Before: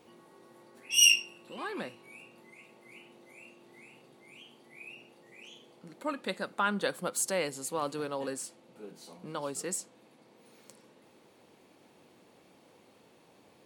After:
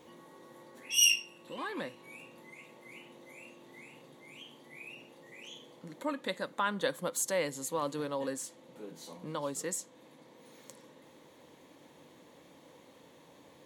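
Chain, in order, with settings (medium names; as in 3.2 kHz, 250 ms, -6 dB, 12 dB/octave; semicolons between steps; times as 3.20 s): rippled EQ curve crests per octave 1.1, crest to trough 6 dB; in parallel at -1 dB: compression, threshold -45 dBFS, peak gain reduction 25 dB; on the sum: trim -3 dB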